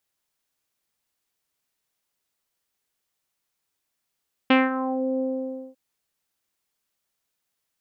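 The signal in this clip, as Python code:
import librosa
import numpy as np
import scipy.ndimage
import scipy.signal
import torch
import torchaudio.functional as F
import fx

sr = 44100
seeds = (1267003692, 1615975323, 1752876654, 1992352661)

y = fx.sub_voice(sr, note=60, wave='saw', cutoff_hz=540.0, q=2.3, env_oct=2.5, env_s=0.53, attack_ms=5.8, decay_s=0.19, sustain_db=-12, release_s=0.55, note_s=0.7, slope=24)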